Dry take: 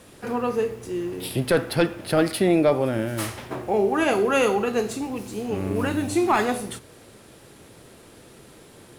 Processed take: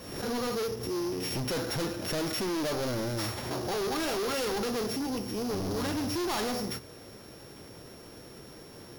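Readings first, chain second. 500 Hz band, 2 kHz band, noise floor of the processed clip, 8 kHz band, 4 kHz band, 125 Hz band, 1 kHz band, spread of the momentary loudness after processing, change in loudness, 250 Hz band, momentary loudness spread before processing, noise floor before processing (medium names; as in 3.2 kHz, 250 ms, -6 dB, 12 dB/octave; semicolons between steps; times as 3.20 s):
-9.5 dB, -9.0 dB, -49 dBFS, -2.0 dB, 0.0 dB, -6.5 dB, -9.0 dB, 17 LU, -8.0 dB, -8.0 dB, 11 LU, -49 dBFS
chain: sorted samples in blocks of 8 samples; overload inside the chain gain 29.5 dB; swell ahead of each attack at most 57 dB/s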